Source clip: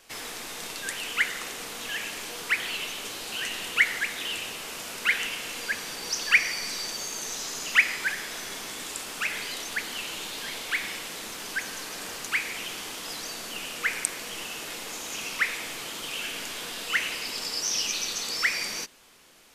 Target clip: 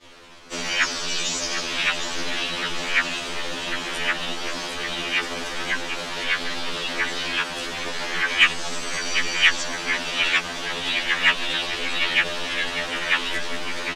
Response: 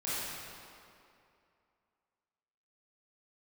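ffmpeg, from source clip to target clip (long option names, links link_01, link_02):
-filter_complex "[0:a]areverse,lowpass=3800,lowshelf=frequency=140:gain=11.5,bandreject=frequency=2100:width=11,aecho=1:1:1057|2114|3171|4228|5285|6342:0.355|0.192|0.103|0.0559|0.0302|0.0163,asplit=4[link_01][link_02][link_03][link_04];[link_02]asetrate=22050,aresample=44100,atempo=2,volume=-18dB[link_05];[link_03]asetrate=29433,aresample=44100,atempo=1.49831,volume=-11dB[link_06];[link_04]asetrate=55563,aresample=44100,atempo=0.793701,volume=-1dB[link_07];[link_01][link_05][link_06][link_07]amix=inputs=4:normalize=0,asplit=2[link_08][link_09];[link_09]acompressor=threshold=-43dB:ratio=6,volume=-2.5dB[link_10];[link_08][link_10]amix=inputs=2:normalize=0,atempo=1.4,acrossover=split=180[link_11][link_12];[link_12]acontrast=81[link_13];[link_11][link_13]amix=inputs=2:normalize=0,afftfilt=real='re*2*eq(mod(b,4),0)':imag='im*2*eq(mod(b,4),0)':win_size=2048:overlap=0.75"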